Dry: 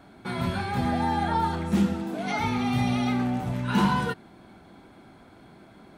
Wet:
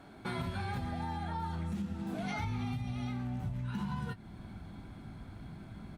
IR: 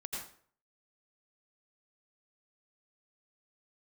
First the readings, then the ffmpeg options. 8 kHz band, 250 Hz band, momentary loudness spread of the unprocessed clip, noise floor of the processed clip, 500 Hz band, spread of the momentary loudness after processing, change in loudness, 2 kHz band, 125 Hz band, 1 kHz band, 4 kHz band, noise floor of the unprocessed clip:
-12.5 dB, -12.5 dB, 7 LU, -51 dBFS, -13.5 dB, 12 LU, -12.5 dB, -12.0 dB, -7.0 dB, -13.5 dB, -12.5 dB, -52 dBFS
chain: -filter_complex "[0:a]asubboost=boost=7.5:cutoff=150,alimiter=limit=-17.5dB:level=0:latency=1:release=380,acompressor=threshold=-31dB:ratio=6,asplit=2[a][b];[b]adelay=19,volume=-12dB[c];[a][c]amix=inputs=2:normalize=0,volume=-2.5dB" -ar 48000 -c:a libopus -b:a 64k

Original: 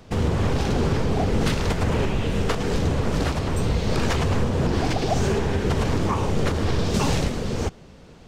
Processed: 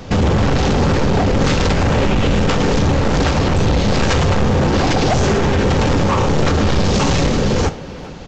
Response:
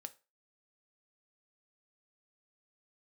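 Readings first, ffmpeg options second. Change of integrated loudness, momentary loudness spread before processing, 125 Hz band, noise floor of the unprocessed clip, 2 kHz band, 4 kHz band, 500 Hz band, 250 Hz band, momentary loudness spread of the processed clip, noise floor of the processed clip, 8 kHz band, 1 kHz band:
+8.0 dB, 2 LU, +7.0 dB, -46 dBFS, +9.0 dB, +9.0 dB, +8.0 dB, +8.0 dB, 1 LU, -30 dBFS, +8.0 dB, +9.0 dB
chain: -filter_complex "[0:a]aresample=16000,asoftclip=type=hard:threshold=-23.5dB,aresample=44100,asplit=2[a][b];[b]adelay=400,highpass=300,lowpass=3.4k,asoftclip=type=hard:threshold=-29.5dB,volume=-16dB[c];[a][c]amix=inputs=2:normalize=0[d];[1:a]atrim=start_sample=2205[e];[d][e]afir=irnorm=-1:irlink=0,alimiter=level_in=27.5dB:limit=-1dB:release=50:level=0:latency=1,volume=-8dB"

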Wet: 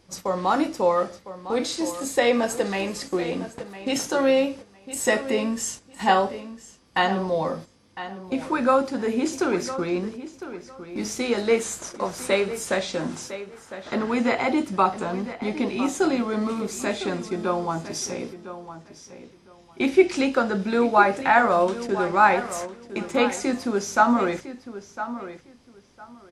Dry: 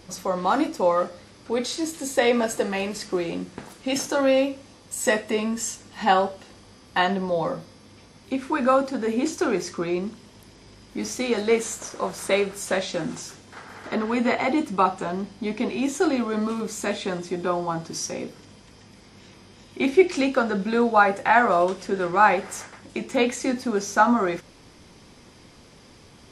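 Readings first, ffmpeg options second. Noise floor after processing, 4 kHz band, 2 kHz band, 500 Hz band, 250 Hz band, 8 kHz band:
-53 dBFS, 0.0 dB, 0.0 dB, 0.0 dB, 0.0 dB, 0.0 dB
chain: -filter_complex "[0:a]agate=range=-10dB:threshold=-37dB:ratio=16:detection=peak,asplit=2[a][b];[b]adelay=1006,lowpass=f=4.2k:p=1,volume=-12.5dB,asplit=2[c][d];[d]adelay=1006,lowpass=f=4.2k:p=1,volume=0.2[e];[c][e]amix=inputs=2:normalize=0[f];[a][f]amix=inputs=2:normalize=0"

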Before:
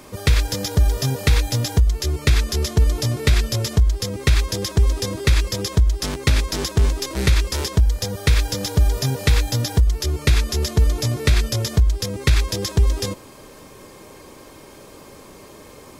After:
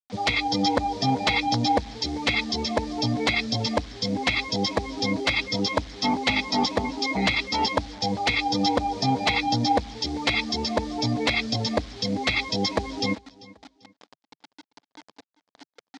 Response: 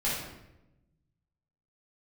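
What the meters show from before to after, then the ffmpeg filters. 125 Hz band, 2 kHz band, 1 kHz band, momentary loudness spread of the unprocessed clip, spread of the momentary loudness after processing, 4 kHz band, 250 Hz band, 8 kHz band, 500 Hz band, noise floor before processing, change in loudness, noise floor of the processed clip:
-13.5 dB, +2.5 dB, +9.0 dB, 3 LU, 5 LU, +0.5 dB, +2.0 dB, -10.0 dB, -1.0 dB, -43 dBFS, -4.0 dB, under -85 dBFS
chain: -filter_complex "[0:a]afftdn=nr=27:nf=-29,aecho=1:1:1.5:0.93,asplit=2[a][b];[b]acompressor=threshold=-20dB:ratio=10,volume=2.5dB[c];[a][c]amix=inputs=2:normalize=0,asplit=3[d][e][f];[d]bandpass=f=300:t=q:w=8,volume=0dB[g];[e]bandpass=f=870:t=q:w=8,volume=-6dB[h];[f]bandpass=f=2.24k:t=q:w=8,volume=-9dB[i];[g][h][i]amix=inputs=3:normalize=0,aresample=16000,aeval=exprs='(mod(16.8*val(0)+1,2)-1)/16.8':c=same,aresample=44100,acrusher=bits=9:mix=0:aa=0.000001,crystalizer=i=4.5:c=0,aeval=exprs='0.316*sin(PI/2*3.98*val(0)/0.316)':c=same,highpass=150,equalizer=f=150:t=q:w=4:g=-9,equalizer=f=360:t=q:w=4:g=-9,equalizer=f=680:t=q:w=4:g=5,equalizer=f=1.4k:t=q:w=4:g=-4,equalizer=f=2.7k:t=q:w=4:g=-7,lowpass=f=4.8k:w=0.5412,lowpass=f=4.8k:w=1.3066,aecho=1:1:392|784:0.0841|0.0278"

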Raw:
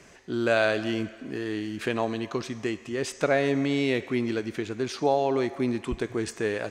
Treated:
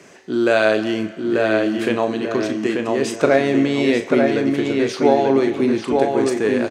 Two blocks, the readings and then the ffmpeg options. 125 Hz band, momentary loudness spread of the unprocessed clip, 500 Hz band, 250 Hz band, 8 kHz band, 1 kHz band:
+4.5 dB, 9 LU, +10.0 dB, +10.0 dB, +6.0 dB, +8.5 dB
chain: -filter_complex "[0:a]highpass=210,lowshelf=f=450:g=6,asplit=2[a][b];[b]adelay=37,volume=-9dB[c];[a][c]amix=inputs=2:normalize=0,asplit=2[d][e];[e]adelay=888,lowpass=f=3.1k:p=1,volume=-3dB,asplit=2[f][g];[g]adelay=888,lowpass=f=3.1k:p=1,volume=0.35,asplit=2[h][i];[i]adelay=888,lowpass=f=3.1k:p=1,volume=0.35,asplit=2[j][k];[k]adelay=888,lowpass=f=3.1k:p=1,volume=0.35,asplit=2[l][m];[m]adelay=888,lowpass=f=3.1k:p=1,volume=0.35[n];[d][f][h][j][l][n]amix=inputs=6:normalize=0,volume=5dB"

